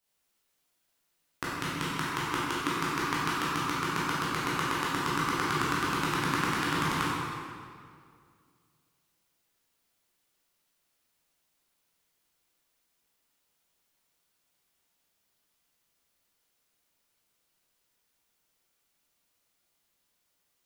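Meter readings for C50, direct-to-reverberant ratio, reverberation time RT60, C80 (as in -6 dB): -3.5 dB, -8.5 dB, 2.2 s, -1.0 dB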